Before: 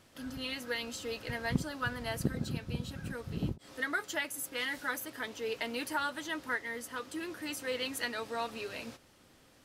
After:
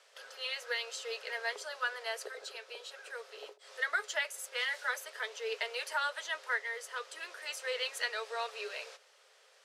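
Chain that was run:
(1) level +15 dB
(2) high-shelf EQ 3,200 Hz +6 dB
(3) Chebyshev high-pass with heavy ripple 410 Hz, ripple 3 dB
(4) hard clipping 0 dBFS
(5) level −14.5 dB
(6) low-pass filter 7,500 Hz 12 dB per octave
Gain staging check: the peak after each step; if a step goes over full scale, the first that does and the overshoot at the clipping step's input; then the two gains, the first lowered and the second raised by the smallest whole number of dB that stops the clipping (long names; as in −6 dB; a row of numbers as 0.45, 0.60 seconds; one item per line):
−1.5, −1.0, −5.0, −5.0, −19.5, −19.5 dBFS
no step passes full scale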